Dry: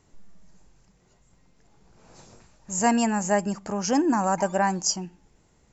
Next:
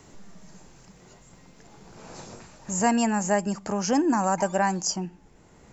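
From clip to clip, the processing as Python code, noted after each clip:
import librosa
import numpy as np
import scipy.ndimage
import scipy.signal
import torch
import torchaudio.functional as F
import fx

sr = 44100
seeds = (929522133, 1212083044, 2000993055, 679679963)

y = fx.band_squash(x, sr, depth_pct=40)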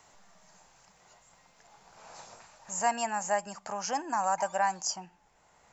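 y = fx.low_shelf_res(x, sr, hz=500.0, db=-12.0, q=1.5)
y = y * librosa.db_to_amplitude(-5.0)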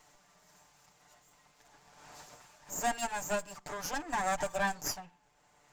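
y = fx.lower_of_two(x, sr, delay_ms=6.8)
y = y * librosa.db_to_amplitude(-1.5)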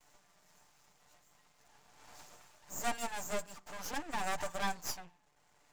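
y = np.maximum(x, 0.0)
y = y * librosa.db_to_amplitude(1.0)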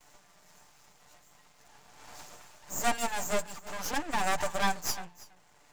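y = x + 10.0 ** (-19.5 / 20.0) * np.pad(x, (int(327 * sr / 1000.0), 0))[:len(x)]
y = y * librosa.db_to_amplitude(7.0)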